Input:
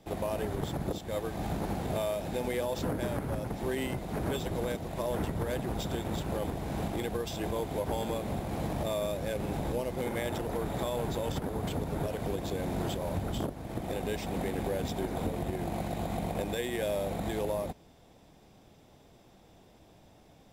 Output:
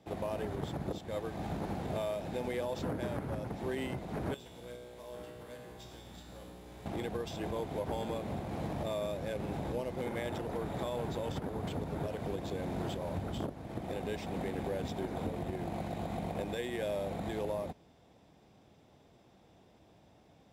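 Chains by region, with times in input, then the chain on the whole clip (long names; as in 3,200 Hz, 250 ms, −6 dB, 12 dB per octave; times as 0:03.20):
0:04.34–0:06.86: high-shelf EQ 2,000 Hz +10 dB + log-companded quantiser 6 bits + tuned comb filter 61 Hz, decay 1.8 s, mix 90%
whole clip: high-pass filter 60 Hz; high-shelf EQ 8,200 Hz −11 dB; level −3.5 dB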